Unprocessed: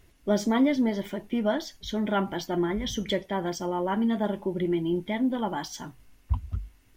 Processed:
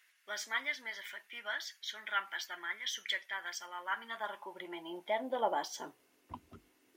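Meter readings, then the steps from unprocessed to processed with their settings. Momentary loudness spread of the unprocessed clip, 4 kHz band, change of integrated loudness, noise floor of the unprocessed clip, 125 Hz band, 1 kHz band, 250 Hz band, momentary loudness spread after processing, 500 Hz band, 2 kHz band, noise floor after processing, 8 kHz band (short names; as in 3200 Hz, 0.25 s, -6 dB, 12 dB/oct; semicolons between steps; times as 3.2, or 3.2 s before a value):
10 LU, -3.0 dB, -10.0 dB, -59 dBFS, under -30 dB, -6.0 dB, -25.5 dB, 11 LU, -13.0 dB, +1.0 dB, -71 dBFS, -4.5 dB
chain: high-pass sweep 1700 Hz -> 340 Hz, 3.68–6.28; gain -5 dB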